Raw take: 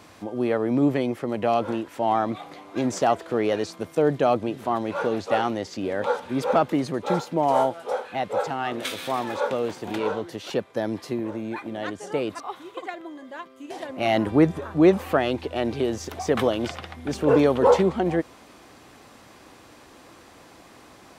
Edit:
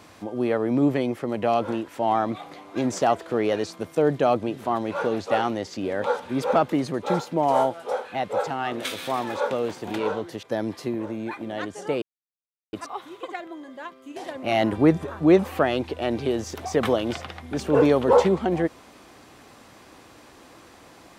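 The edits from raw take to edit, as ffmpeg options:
-filter_complex "[0:a]asplit=3[a][b][c];[a]atrim=end=10.432[d];[b]atrim=start=10.678:end=12.27,asetpts=PTS-STARTPTS,afade=t=out:st=1.588:d=0.004:c=hsin,apad=pad_dur=0.71[e];[c]atrim=start=12.27,asetpts=PTS-STARTPTS,afade=t=in:d=0.004:c=hsin[f];[e][f]concat=n=2:v=0:a=1[g];[d][g]acrossfade=d=0.004:c1=hsin:c2=hsin"

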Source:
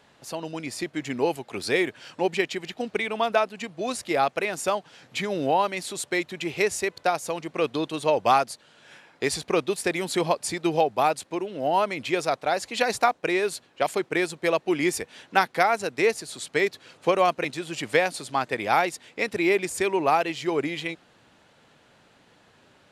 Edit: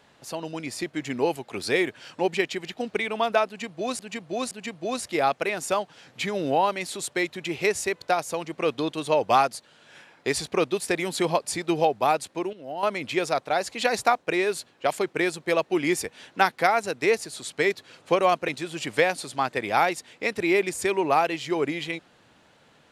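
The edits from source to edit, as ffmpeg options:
-filter_complex "[0:a]asplit=5[a][b][c][d][e];[a]atrim=end=3.992[f];[b]atrim=start=3.468:end=3.992[g];[c]atrim=start=3.468:end=11.492[h];[d]atrim=start=11.488:end=11.792,asetpts=PTS-STARTPTS,volume=-10dB[i];[e]atrim=start=11.788[j];[f][g]acrossfade=d=0.004:c1=hsin:c2=hsin[k];[k][h]acrossfade=d=0.004:c1=hsin:c2=hsin[l];[l][i]acrossfade=d=0.004:c1=hsin:c2=hsin[m];[m][j]acrossfade=d=0.004:c1=hsin:c2=hsin"

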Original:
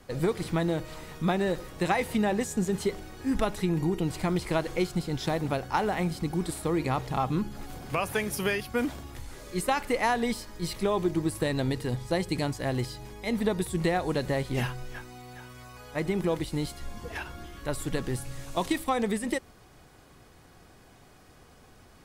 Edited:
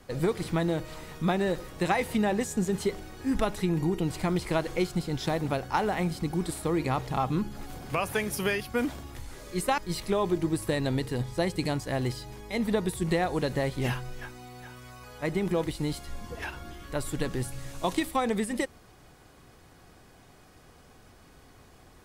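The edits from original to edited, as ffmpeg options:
-filter_complex "[0:a]asplit=2[a][b];[a]atrim=end=9.782[c];[b]atrim=start=10.508[d];[c][d]acrossfade=d=0.004:c1=hsin:c2=hsin"

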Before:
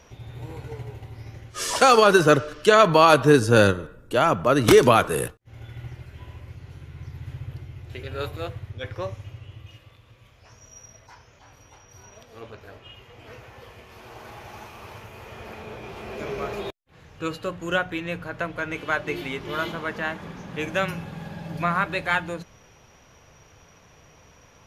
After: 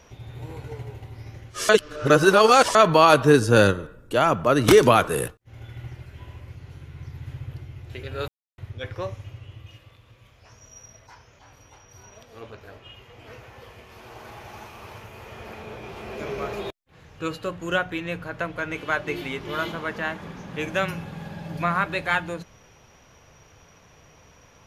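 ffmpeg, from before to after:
-filter_complex "[0:a]asplit=5[a][b][c][d][e];[a]atrim=end=1.692[f];[b]atrim=start=1.688:end=2.752,asetpts=PTS-STARTPTS,areverse[g];[c]atrim=start=2.748:end=8.28,asetpts=PTS-STARTPTS,afade=t=out:st=5.528:d=0.004:c=hsin[h];[d]atrim=start=8.28:end=8.58,asetpts=PTS-STARTPTS,volume=0[i];[e]atrim=start=8.58,asetpts=PTS-STARTPTS,afade=t=in:d=0.004:c=hsin[j];[f][g]acrossfade=d=0.004:c1=hsin:c2=hsin[k];[h][i][j]concat=n=3:v=0:a=1[l];[k][l]acrossfade=d=0.004:c1=hsin:c2=hsin"

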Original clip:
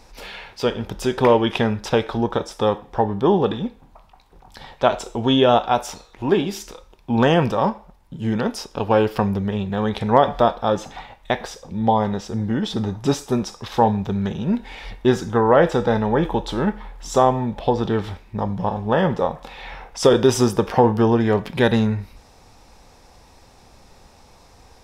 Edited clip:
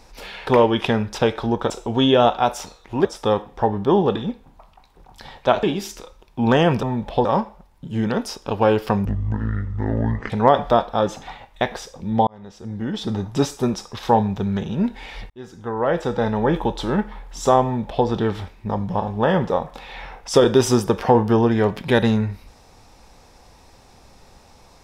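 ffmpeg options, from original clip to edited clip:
-filter_complex "[0:a]asplit=11[a][b][c][d][e][f][g][h][i][j][k];[a]atrim=end=0.472[l];[b]atrim=start=1.178:end=2.412[m];[c]atrim=start=4.988:end=6.342[n];[d]atrim=start=2.408:end=4.992[o];[e]atrim=start=6.338:end=7.542[p];[f]atrim=start=17.328:end=17.752[q];[g]atrim=start=7.538:end=9.344[r];[h]atrim=start=9.34:end=9.99,asetpts=PTS-STARTPTS,asetrate=22932,aresample=44100[s];[i]atrim=start=9.986:end=11.96,asetpts=PTS-STARTPTS,afade=t=out:st=1.97:d=0.004:c=hsin[t];[j]atrim=start=11.96:end=14.99,asetpts=PTS-STARTPTS,afade=t=in:d=0.95,afade=t=out:st=3.026:d=0.004:c=hsin[u];[k]atrim=start=14.99,asetpts=PTS-STARTPTS,afade=t=in:d=1.19[v];[l][m]acrossfade=d=0.004:c1=hsin:c2=hsin[w];[w][n]acrossfade=d=0.004:c1=hsin:c2=hsin[x];[x][o]acrossfade=d=0.004:c1=hsin:c2=hsin[y];[y][p]acrossfade=d=0.004:c1=hsin:c2=hsin[z];[z][q]acrossfade=d=0.004:c1=hsin:c2=hsin[aa];[aa][r]acrossfade=d=0.004:c1=hsin:c2=hsin[ab];[ab][s]acrossfade=d=0.004:c1=hsin:c2=hsin[ac];[t][u][v]concat=n=3:v=0:a=1[ad];[ac][ad]acrossfade=d=0.004:c1=hsin:c2=hsin"

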